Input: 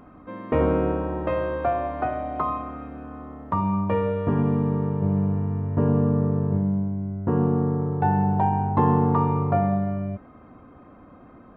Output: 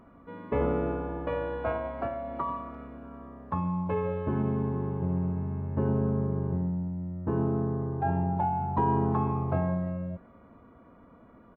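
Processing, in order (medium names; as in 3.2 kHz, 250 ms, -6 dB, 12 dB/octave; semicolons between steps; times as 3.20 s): speakerphone echo 340 ms, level -26 dB; formant-preserving pitch shift -1.5 st; trim -6 dB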